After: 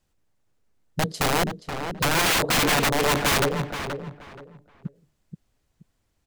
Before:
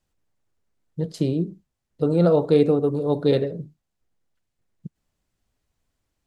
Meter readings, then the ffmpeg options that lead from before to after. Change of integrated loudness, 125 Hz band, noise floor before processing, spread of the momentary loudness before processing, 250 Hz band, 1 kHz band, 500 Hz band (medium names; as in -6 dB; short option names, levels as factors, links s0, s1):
-1.0 dB, -4.0 dB, -80 dBFS, 14 LU, -6.0 dB, +11.0 dB, -6.5 dB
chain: -filter_complex "[0:a]aeval=exprs='(mod(9.44*val(0)+1,2)-1)/9.44':c=same,asplit=2[s0][s1];[s1]adelay=477,lowpass=f=2700:p=1,volume=0.422,asplit=2[s2][s3];[s3]adelay=477,lowpass=f=2700:p=1,volume=0.25,asplit=2[s4][s5];[s5]adelay=477,lowpass=f=2700:p=1,volume=0.25[s6];[s0][s2][s4][s6]amix=inputs=4:normalize=0,volume=1.5"